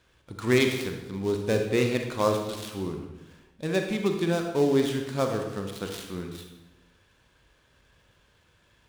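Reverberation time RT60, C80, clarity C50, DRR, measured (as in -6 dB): 1.1 s, 7.5 dB, 5.0 dB, 3.5 dB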